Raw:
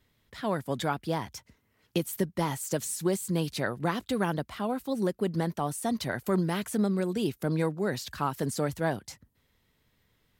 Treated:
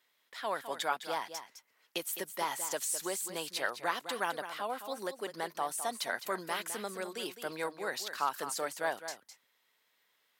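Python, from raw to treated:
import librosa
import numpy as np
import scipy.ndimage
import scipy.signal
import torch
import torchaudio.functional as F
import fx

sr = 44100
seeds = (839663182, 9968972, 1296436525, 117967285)

p1 = scipy.signal.sosfilt(scipy.signal.butter(2, 720.0, 'highpass', fs=sr, output='sos'), x)
y = p1 + fx.echo_single(p1, sr, ms=209, db=-10.5, dry=0)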